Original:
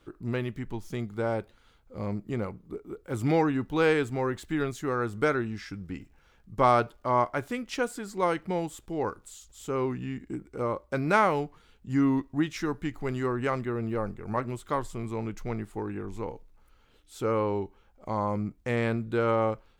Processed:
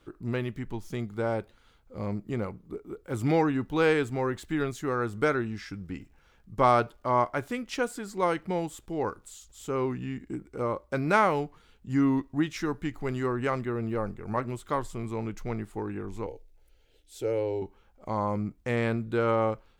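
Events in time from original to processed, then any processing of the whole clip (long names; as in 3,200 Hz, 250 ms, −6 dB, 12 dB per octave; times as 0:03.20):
0:16.26–0:17.62: phaser with its sweep stopped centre 470 Hz, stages 4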